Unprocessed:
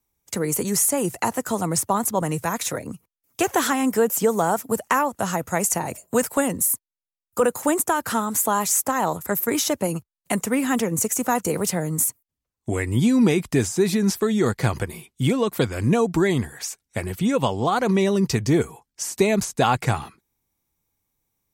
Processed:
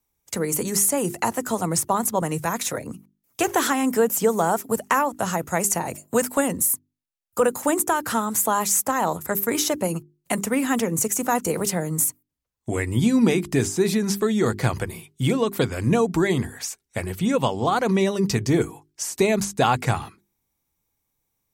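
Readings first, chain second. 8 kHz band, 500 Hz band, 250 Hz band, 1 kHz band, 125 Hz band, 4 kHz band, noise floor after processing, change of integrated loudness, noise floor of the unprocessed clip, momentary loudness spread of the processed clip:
0.0 dB, −0.5 dB, −1.0 dB, 0.0 dB, −1.0 dB, 0.0 dB, −77 dBFS, −0.5 dB, below −85 dBFS, 9 LU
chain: mains-hum notches 50/100/150/200/250/300/350/400 Hz

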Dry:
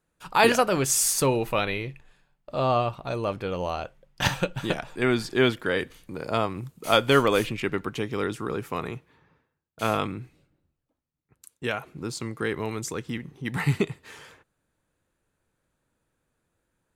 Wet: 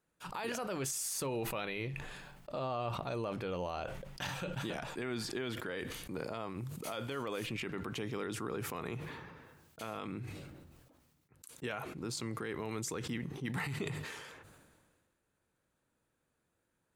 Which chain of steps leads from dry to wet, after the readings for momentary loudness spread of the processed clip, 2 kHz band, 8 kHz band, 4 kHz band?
11 LU, −13.0 dB, −12.5 dB, −13.0 dB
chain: downward compressor, threshold −27 dBFS, peak gain reduction 13 dB
brickwall limiter −24.5 dBFS, peak gain reduction 11 dB
high-pass filter 58 Hz 6 dB per octave
mains-hum notches 50/100/150 Hz
level that may fall only so fast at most 34 dB per second
level −4 dB

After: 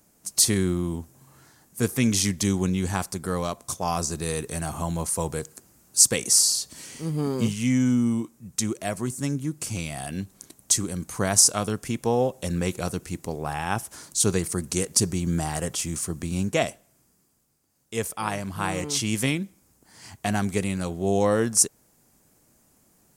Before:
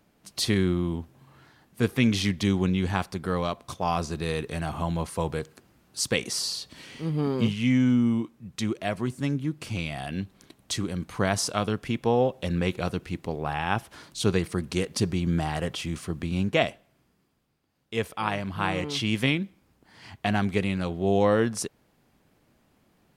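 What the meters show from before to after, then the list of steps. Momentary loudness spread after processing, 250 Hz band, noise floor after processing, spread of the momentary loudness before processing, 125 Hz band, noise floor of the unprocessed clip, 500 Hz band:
13 LU, 0.0 dB, −63 dBFS, 10 LU, 0.0 dB, −67 dBFS, 0.0 dB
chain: high shelf with overshoot 5,000 Hz +13 dB, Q 1.5

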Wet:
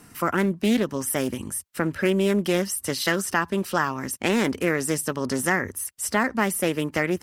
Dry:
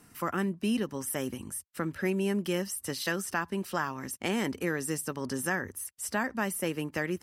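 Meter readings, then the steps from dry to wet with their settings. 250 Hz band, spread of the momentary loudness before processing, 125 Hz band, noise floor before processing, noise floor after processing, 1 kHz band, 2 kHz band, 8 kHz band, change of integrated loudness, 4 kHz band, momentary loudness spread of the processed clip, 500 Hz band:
+7.5 dB, 5 LU, +7.0 dB, −60 dBFS, −52 dBFS, +8.0 dB, +7.5 dB, +7.5 dB, +8.0 dB, +8.0 dB, 5 LU, +8.5 dB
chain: highs frequency-modulated by the lows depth 0.28 ms
level +8 dB

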